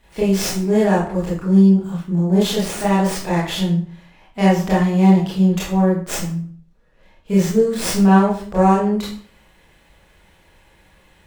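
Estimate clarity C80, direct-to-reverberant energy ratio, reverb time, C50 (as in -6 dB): 8.5 dB, -8.0 dB, 0.50 s, 3.0 dB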